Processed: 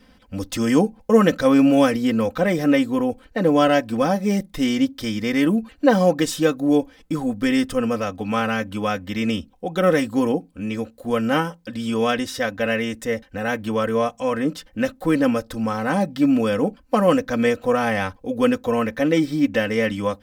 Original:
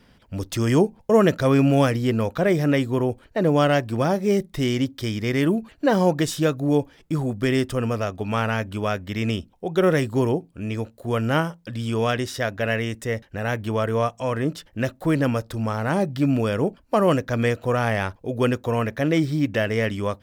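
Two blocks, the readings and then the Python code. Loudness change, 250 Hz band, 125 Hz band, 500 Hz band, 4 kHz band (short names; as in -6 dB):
+2.0 dB, +3.5 dB, -6.0 dB, +1.5 dB, +2.0 dB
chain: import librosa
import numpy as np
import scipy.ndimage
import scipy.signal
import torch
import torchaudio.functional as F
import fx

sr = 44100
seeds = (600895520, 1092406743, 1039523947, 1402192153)

y = x + 0.79 * np.pad(x, (int(3.9 * sr / 1000.0), 0))[:len(x)]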